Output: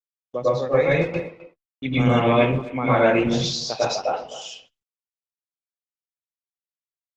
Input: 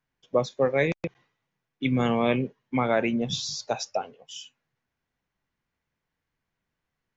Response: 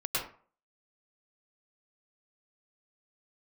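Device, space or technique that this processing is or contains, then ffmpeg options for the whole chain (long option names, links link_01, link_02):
speakerphone in a meeting room: -filter_complex "[0:a]asplit=3[link_01][link_02][link_03];[link_01]afade=type=out:start_time=3.43:duration=0.02[link_04];[link_02]adynamicequalizer=threshold=0.00355:dfrequency=4400:dqfactor=3:tfrequency=4400:tqfactor=3:attack=5:release=100:ratio=0.375:range=2:mode=boostabove:tftype=bell,afade=type=in:start_time=3.43:duration=0.02,afade=type=out:start_time=4.2:duration=0.02[link_05];[link_03]afade=type=in:start_time=4.2:duration=0.02[link_06];[link_04][link_05][link_06]amix=inputs=3:normalize=0[link_07];[1:a]atrim=start_sample=2205[link_08];[link_07][link_08]afir=irnorm=-1:irlink=0,asplit=2[link_09][link_10];[link_10]adelay=260,highpass=300,lowpass=3400,asoftclip=type=hard:threshold=-13.5dB,volume=-16dB[link_11];[link_09][link_11]amix=inputs=2:normalize=0,dynaudnorm=framelen=100:gausssize=17:maxgain=8dB,agate=range=-48dB:threshold=-43dB:ratio=16:detection=peak,volume=-4dB" -ar 48000 -c:a libopus -b:a 16k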